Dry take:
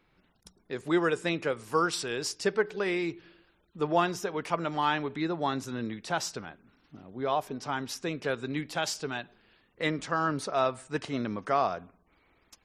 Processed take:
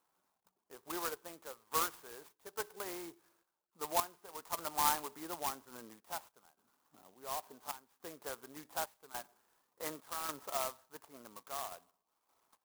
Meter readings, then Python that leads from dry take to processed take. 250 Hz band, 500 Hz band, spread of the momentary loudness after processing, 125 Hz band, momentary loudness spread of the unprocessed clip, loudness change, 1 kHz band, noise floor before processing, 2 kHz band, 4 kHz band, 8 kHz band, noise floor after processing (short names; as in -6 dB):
-19.0 dB, -15.0 dB, 18 LU, -23.0 dB, 9 LU, -9.0 dB, -8.5 dB, -69 dBFS, -14.0 dB, -9.0 dB, -2.5 dB, -85 dBFS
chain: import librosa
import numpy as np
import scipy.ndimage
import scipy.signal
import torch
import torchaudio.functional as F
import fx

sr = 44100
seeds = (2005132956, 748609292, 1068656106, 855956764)

y = fx.tremolo_random(x, sr, seeds[0], hz=3.5, depth_pct=85)
y = fx.bandpass_q(y, sr, hz=1000.0, q=2.2)
y = fx.clock_jitter(y, sr, seeds[1], jitter_ms=0.11)